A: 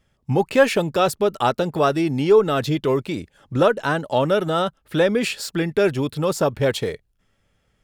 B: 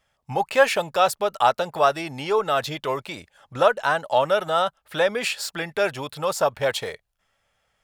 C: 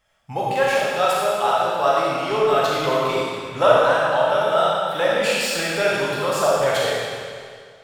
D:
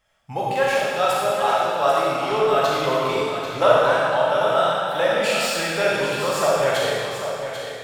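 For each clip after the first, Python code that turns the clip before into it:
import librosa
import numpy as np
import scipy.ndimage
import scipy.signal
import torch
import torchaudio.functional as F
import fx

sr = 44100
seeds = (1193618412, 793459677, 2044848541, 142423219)

y1 = fx.low_shelf_res(x, sr, hz=480.0, db=-11.0, q=1.5)
y2 = fx.rider(y1, sr, range_db=5, speed_s=0.5)
y2 = fx.rev_freeverb(y2, sr, rt60_s=2.1, hf_ratio=0.95, predelay_ms=0, drr_db=-6.0)
y2 = F.gain(torch.from_numpy(y2), -4.0).numpy()
y3 = y2 + 10.0 ** (-9.0 / 20.0) * np.pad(y2, (int(791 * sr / 1000.0), 0))[:len(y2)]
y3 = F.gain(torch.from_numpy(y3), -1.0).numpy()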